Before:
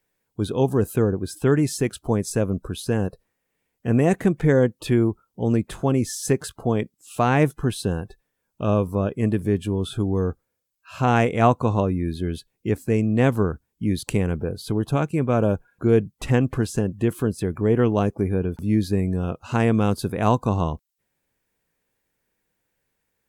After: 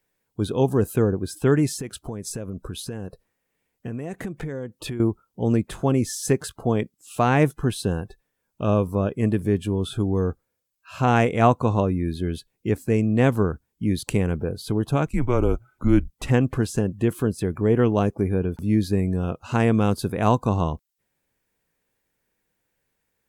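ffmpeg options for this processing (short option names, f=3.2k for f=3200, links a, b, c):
-filter_complex "[0:a]asettb=1/sr,asplit=3[a][b][c];[a]atrim=end=1.714[d];[b]atrim=start=1.71:end=5,asetpts=PTS-STARTPTS,afade=t=in:d=0.004:c=qsin,afade=t=out:st=3.286:d=0.004:c=qsin,acompressor=threshold=-27dB:ratio=8:attack=3.2:release=140:knee=1:detection=peak[e];[c]atrim=start=4.996[f];[d][e]acrossfade=d=0.004:c1=hsin:c2=qsin[g];[g][f]acrossfade=d=0.004:c1=qsin:c2=hsin,asettb=1/sr,asplit=3[h][i][j];[h]atrim=end=15.064[k];[i]atrim=start=15.06:end=16.13,asetpts=PTS-STARTPTS,afade=t=in:d=0.004:c=qsin,afade=t=out:st=1.066:d=0.004:c=qsin,afreqshift=-130[l];[j]atrim=start=16.126[m];[k][l]acrossfade=d=0.004:c1=hsin:c2=qsin[n];[n][m]acrossfade=d=0.004:c1=qsin:c2=hsin"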